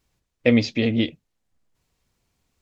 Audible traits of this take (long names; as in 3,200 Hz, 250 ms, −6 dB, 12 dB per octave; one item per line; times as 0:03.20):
background noise floor −77 dBFS
spectral slope −5.5 dB per octave